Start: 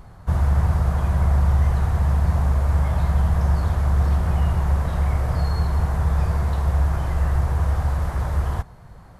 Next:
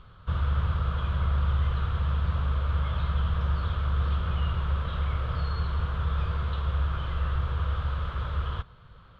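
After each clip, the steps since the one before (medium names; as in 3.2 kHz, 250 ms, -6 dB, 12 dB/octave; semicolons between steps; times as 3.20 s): FFT filter 120 Hz 0 dB, 200 Hz -3 dB, 330 Hz -4 dB, 500 Hz +2 dB, 770 Hz -10 dB, 1.3 kHz +10 dB, 1.9 kHz -2 dB, 3.3 kHz +15 dB, 5.3 kHz -10 dB, 8 kHz -21 dB; trim -7.5 dB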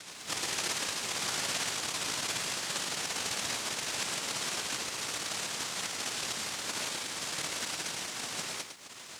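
upward compressor, threshold -28 dBFS; noise-vocoded speech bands 1; bit-crushed delay 106 ms, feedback 35%, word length 9-bit, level -7 dB; trim -3 dB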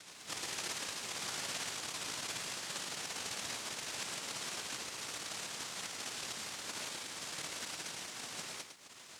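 trim -6.5 dB; MP3 160 kbps 48 kHz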